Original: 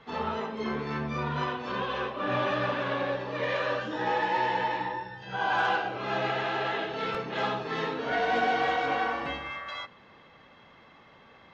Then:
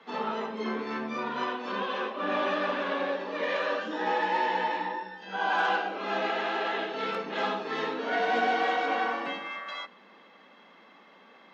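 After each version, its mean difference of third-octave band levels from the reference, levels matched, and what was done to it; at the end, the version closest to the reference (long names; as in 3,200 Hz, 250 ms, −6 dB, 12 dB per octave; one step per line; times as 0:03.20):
2.5 dB: Butterworth high-pass 180 Hz 72 dB per octave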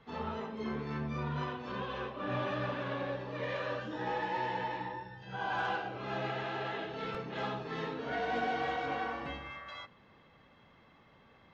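1.5 dB: low-shelf EQ 250 Hz +8 dB
level −8.5 dB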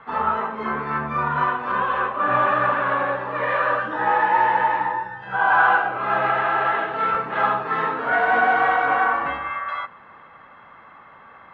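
6.0 dB: drawn EQ curve 430 Hz 0 dB, 1,300 Hz +13 dB, 5,200 Hz −14 dB
level +1.5 dB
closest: second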